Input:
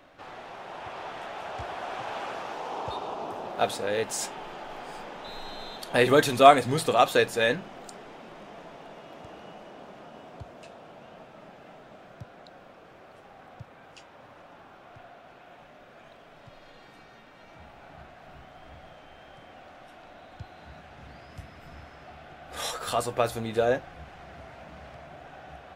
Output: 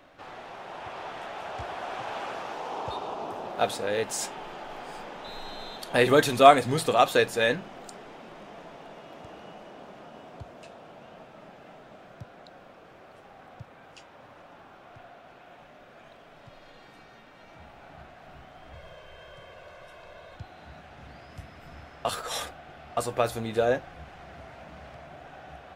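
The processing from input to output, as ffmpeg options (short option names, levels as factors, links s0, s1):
-filter_complex "[0:a]asettb=1/sr,asplit=3[s0][s1][s2];[s0]atrim=end=18.734[s3];[s1]atrim=start=18.73:end=20.36,asetpts=PTS-STARTPTS,afade=t=in:d=0.004:c=qsin,afade=t=out:st=1.626:d=0.004:c=qsin,aecho=1:1:1.9:0.79,atrim=end_sample=71883[s4];[s2]atrim=start=20.356[s5];[s3][s4]acrossfade=d=0.004:c1=hsin:c2=qsin[s6];[s6][s5]acrossfade=d=0.004:c1=qsin:c2=hsin,asplit=3[s7][s8][s9];[s7]atrim=end=22.052[s10];[s8]atrim=start=22.048:end=22.972,asetpts=PTS-STARTPTS,areverse[s11];[s9]atrim=start=22.968[s12];[s10][s11]acrossfade=d=0.004:c1=hsin:c2=hsin[s13];[s13][s12]acrossfade=d=0.004:c1=hsin:c2=hsin"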